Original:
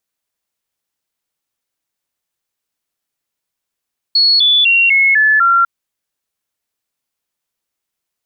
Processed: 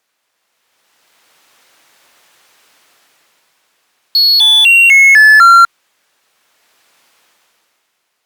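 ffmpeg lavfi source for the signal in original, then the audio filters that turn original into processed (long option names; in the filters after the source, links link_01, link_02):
-f lavfi -i "aevalsrc='0.422*clip(min(mod(t,0.25),0.25-mod(t,0.25))/0.005,0,1)*sin(2*PI*4360*pow(2,-floor(t/0.25)/3)*mod(t,0.25))':duration=1.5:sample_rate=44100"
-filter_complex "[0:a]dynaudnorm=framelen=120:gausssize=17:maxgain=17dB,asplit=2[link_01][link_02];[link_02]highpass=frequency=720:poles=1,volume=26dB,asoftclip=type=tanh:threshold=-0.5dB[link_03];[link_01][link_03]amix=inputs=2:normalize=0,lowpass=frequency=2400:poles=1,volume=-6dB" -ar 48000 -c:a libopus -b:a 96k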